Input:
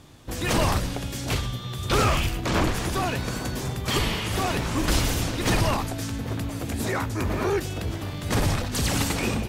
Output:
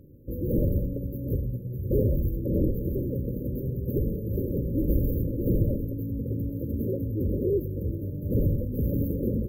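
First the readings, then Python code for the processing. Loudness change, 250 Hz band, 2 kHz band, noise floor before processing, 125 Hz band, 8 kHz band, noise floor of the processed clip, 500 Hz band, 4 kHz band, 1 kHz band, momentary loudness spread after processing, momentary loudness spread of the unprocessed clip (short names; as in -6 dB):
-2.5 dB, 0.0 dB, under -40 dB, -34 dBFS, 0.0 dB, under -40 dB, -35 dBFS, -1.0 dB, under -40 dB, under -40 dB, 6 LU, 8 LU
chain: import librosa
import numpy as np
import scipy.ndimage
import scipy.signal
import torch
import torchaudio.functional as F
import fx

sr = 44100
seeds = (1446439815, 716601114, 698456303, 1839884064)

y = fx.brickwall_bandstop(x, sr, low_hz=590.0, high_hz=13000.0)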